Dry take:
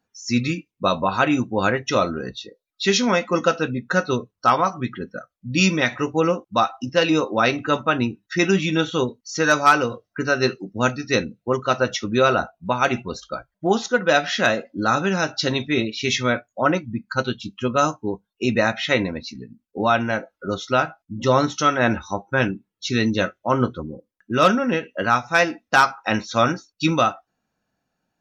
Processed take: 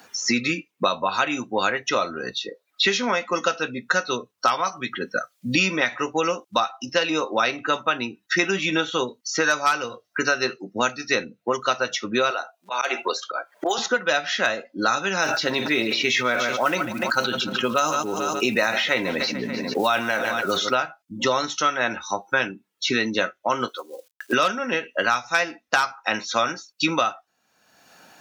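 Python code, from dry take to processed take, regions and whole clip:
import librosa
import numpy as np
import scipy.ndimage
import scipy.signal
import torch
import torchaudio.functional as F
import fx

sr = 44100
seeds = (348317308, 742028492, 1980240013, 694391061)

y = fx.chain(x, sr, fx.highpass(hz=370.0, slope=24),
    fx.auto_swell(attack_ms=282.0),
    fx.band_squash(depth_pct=70), at=(12.3, 13.78))
y = fx.chain(y, sr, fx.block_float(bits=7),
    fx.echo_feedback(ms=146, feedback_pct=56, wet_db=-21.5),
    fx.sustainer(db_per_s=28.0), at=(15.22, 20.75))
y = fx.chain(y, sr, fx.highpass(hz=460.0, slope=24),
    fx.quant_companded(bits=8), at=(23.68, 24.33))
y = fx.highpass(y, sr, hz=790.0, slope=6)
y = fx.band_squash(y, sr, depth_pct=100)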